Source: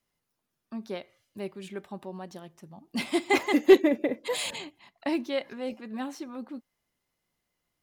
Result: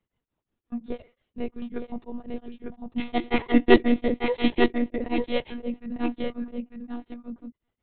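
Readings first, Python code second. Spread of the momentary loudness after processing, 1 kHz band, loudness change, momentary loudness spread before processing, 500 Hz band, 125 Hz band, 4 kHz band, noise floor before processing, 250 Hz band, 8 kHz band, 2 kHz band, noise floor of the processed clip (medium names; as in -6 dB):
19 LU, +3.5 dB, +0.5 dB, 22 LU, 0.0 dB, no reading, 0.0 dB, -82 dBFS, +4.5 dB, under -35 dB, +1.5 dB, under -85 dBFS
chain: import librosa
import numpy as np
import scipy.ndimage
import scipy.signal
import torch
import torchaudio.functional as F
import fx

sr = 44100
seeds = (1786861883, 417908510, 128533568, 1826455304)

y = scipy.signal.sosfilt(scipy.signal.butter(4, 130.0, 'highpass', fs=sr, output='sos'), x)
y = fx.low_shelf(y, sr, hz=430.0, db=11.0)
y = y + 10.0 ** (-4.5 / 20.0) * np.pad(y, (int(900 * sr / 1000.0), 0))[:len(y)]
y = fx.lpc_monotone(y, sr, seeds[0], pitch_hz=240.0, order=16)
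y = y * np.abs(np.cos(np.pi * 5.6 * np.arange(len(y)) / sr))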